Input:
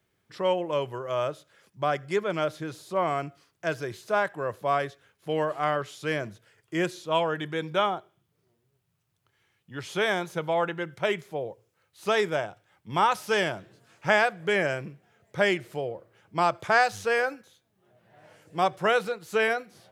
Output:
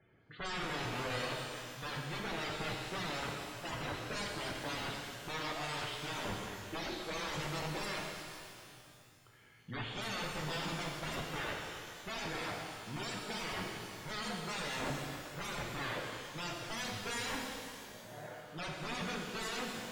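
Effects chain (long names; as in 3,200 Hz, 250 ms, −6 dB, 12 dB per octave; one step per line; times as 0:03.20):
low-pass filter 3,900 Hz 24 dB per octave
reversed playback
downward compressor 10 to 1, threshold −35 dBFS, peak gain reduction 19.5 dB
reversed playback
wrap-around overflow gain 39 dB
spectral peaks only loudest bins 64
reverb with rising layers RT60 2.4 s, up +12 semitones, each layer −8 dB, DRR 0 dB
level +5.5 dB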